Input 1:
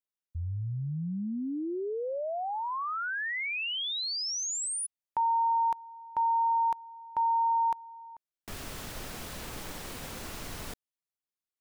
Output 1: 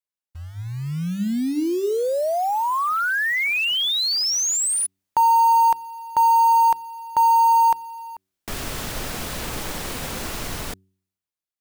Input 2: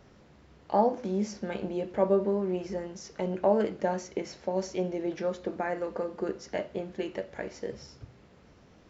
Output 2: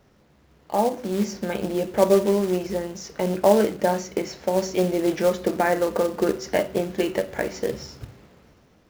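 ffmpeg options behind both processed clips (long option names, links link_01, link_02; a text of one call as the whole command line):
ffmpeg -i in.wav -af "acrusher=bits=4:mode=log:mix=0:aa=0.000001,dynaudnorm=framelen=270:gausssize=7:maxgain=13dB,bandreject=frequency=94.81:width_type=h:width=4,bandreject=frequency=189.62:width_type=h:width=4,bandreject=frequency=284.43:width_type=h:width=4,bandreject=frequency=379.24:width_type=h:width=4,volume=-2dB" out.wav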